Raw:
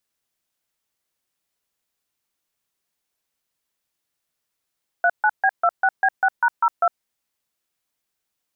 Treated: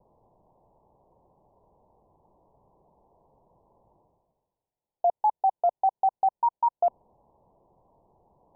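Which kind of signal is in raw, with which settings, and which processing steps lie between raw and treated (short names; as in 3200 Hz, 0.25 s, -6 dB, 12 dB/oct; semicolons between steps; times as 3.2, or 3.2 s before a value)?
DTMF "39B26B6#02", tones 57 ms, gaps 0.141 s, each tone -16.5 dBFS
steep low-pass 1000 Hz 96 dB/oct; bell 270 Hz -6.5 dB 0.59 oct; reverse; upward compressor, threshold -40 dBFS; reverse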